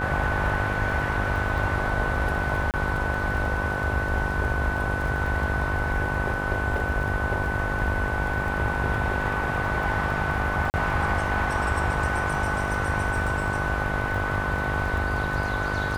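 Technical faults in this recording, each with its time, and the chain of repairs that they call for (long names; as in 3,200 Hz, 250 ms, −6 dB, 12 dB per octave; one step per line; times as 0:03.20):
mains buzz 50 Hz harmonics 22 −31 dBFS
surface crackle 25 per second −33 dBFS
whistle 1,500 Hz −29 dBFS
0:02.71–0:02.74: drop-out 28 ms
0:10.70–0:10.74: drop-out 39 ms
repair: click removal
hum removal 50 Hz, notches 22
notch filter 1,500 Hz, Q 30
repair the gap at 0:02.71, 28 ms
repair the gap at 0:10.70, 39 ms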